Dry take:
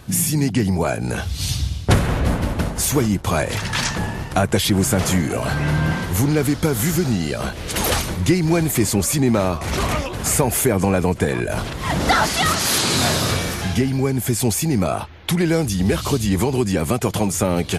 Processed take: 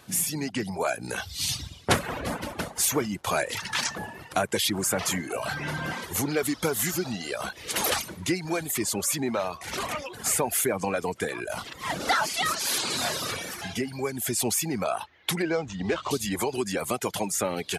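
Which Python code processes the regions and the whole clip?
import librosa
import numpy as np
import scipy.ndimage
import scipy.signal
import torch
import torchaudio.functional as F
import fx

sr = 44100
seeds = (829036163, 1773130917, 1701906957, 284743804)

y = fx.chain(x, sr, fx.median_filter(points=9),
    fx.lowpass(hz=7000.0, slope=24), at=(15.42, 16.11))
y = fx.dereverb_blind(y, sr, rt60_s=0.95)
y = fx.highpass(y, sr, hz=480.0, slope=6)
y = fx.rider(y, sr, range_db=10, speed_s=2.0)
y = y * librosa.db_to_amplitude(-4.5)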